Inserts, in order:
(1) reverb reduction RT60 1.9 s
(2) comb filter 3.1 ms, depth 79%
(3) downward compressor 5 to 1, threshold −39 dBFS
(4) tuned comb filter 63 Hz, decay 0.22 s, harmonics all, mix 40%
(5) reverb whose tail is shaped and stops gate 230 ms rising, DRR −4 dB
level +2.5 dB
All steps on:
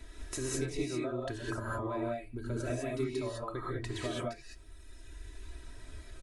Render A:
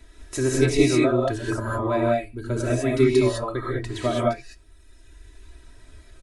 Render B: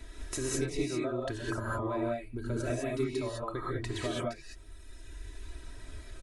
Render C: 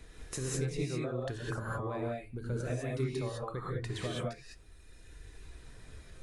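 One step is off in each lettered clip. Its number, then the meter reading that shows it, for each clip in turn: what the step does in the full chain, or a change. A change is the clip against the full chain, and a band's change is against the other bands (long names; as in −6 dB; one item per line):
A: 3, average gain reduction 8.5 dB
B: 4, change in integrated loudness +2.5 LU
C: 2, 125 Hz band +5.0 dB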